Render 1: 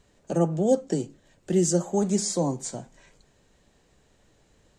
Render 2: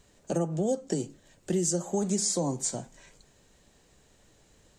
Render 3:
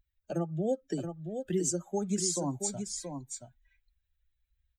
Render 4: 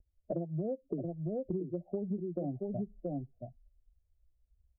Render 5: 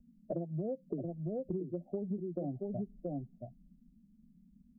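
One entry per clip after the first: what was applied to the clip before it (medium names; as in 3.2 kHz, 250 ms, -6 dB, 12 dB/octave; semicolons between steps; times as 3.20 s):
treble shelf 5.1 kHz +7.5 dB; compression 6:1, threshold -24 dBFS, peak gain reduction 9 dB
expander on every frequency bin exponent 2; delay 676 ms -7 dB
steep low-pass 730 Hz 96 dB/octave; compression 10:1, threshold -38 dBFS, peak gain reduction 13.5 dB; trim +6 dB
band noise 160–250 Hz -62 dBFS; trim -1.5 dB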